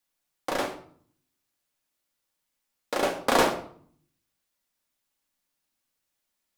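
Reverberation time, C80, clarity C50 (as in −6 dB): 0.55 s, 14.5 dB, 10.5 dB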